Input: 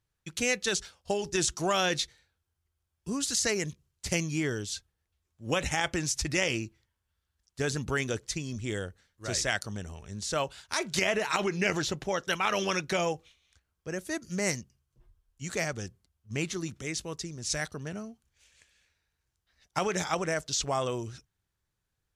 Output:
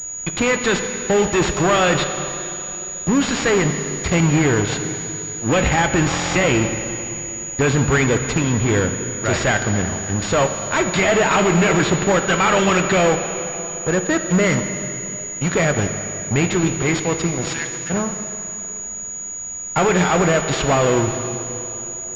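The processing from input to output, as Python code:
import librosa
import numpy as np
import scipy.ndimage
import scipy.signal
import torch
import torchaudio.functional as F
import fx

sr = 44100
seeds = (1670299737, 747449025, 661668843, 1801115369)

y = fx.fuzz(x, sr, gain_db=35.0, gate_db=-43.0)
y = fx.dmg_noise_colour(y, sr, seeds[0], colour='pink', level_db=-47.0)
y = fx.bessel_highpass(y, sr, hz=2400.0, order=8, at=(17.45, 17.89), fade=0.02)
y = fx.rev_plate(y, sr, seeds[1], rt60_s=3.4, hf_ratio=1.0, predelay_ms=0, drr_db=6.0)
y = fx.buffer_glitch(y, sr, at_s=(6.1,), block=1024, repeats=10)
y = fx.pwm(y, sr, carrier_hz=6800.0)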